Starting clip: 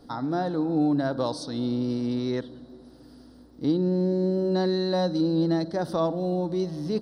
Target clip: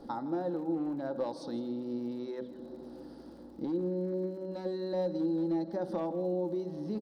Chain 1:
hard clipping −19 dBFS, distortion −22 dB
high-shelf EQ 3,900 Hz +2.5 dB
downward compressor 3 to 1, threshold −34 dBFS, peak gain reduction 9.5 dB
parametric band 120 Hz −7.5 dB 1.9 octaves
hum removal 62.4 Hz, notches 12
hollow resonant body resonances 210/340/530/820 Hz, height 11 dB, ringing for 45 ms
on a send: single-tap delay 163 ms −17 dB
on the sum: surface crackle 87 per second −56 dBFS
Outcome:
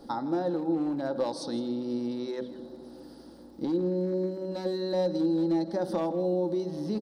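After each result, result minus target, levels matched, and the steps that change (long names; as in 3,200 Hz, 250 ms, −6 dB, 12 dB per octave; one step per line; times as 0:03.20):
8,000 Hz band +8.0 dB; downward compressor: peak gain reduction −4.5 dB
change: high-shelf EQ 3,900 Hz −9 dB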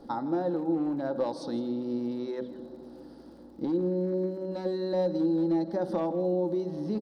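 downward compressor: peak gain reduction −4.5 dB
change: downward compressor 3 to 1, threshold −41 dBFS, peak gain reduction 14.5 dB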